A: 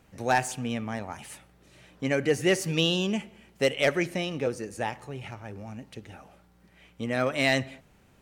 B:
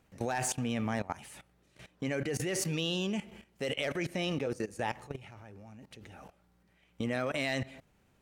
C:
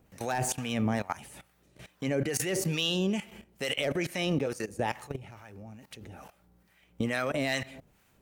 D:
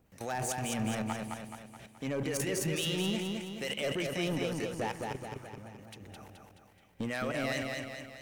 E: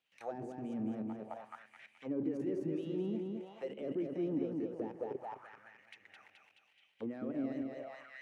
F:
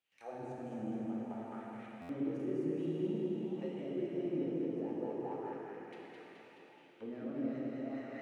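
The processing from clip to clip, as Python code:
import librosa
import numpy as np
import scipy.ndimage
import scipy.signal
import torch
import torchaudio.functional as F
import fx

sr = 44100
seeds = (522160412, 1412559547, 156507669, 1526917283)

y1 = fx.level_steps(x, sr, step_db=18)
y1 = y1 * 10.0 ** (3.5 / 20.0)
y2 = fx.high_shelf(y1, sr, hz=12000.0, db=12.0)
y2 = fx.harmonic_tremolo(y2, sr, hz=2.3, depth_pct=70, crossover_hz=790.0)
y2 = y2 * 10.0 ** (6.5 / 20.0)
y3 = np.clip(y2, -10.0 ** (-24.5 / 20.0), 10.0 ** (-24.5 / 20.0))
y3 = fx.echo_feedback(y3, sr, ms=213, feedback_pct=51, wet_db=-3.5)
y3 = y3 * 10.0 ** (-4.0 / 20.0)
y4 = fx.auto_wah(y3, sr, base_hz=300.0, top_hz=3200.0, q=3.1, full_db=-31.5, direction='down')
y4 = y4 * 10.0 ** (3.5 / 20.0)
y5 = fx.rev_plate(y4, sr, seeds[0], rt60_s=4.3, hf_ratio=0.95, predelay_ms=0, drr_db=-5.0)
y5 = fx.buffer_glitch(y5, sr, at_s=(2.01,), block=512, repeats=6)
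y5 = y5 * 10.0 ** (-6.0 / 20.0)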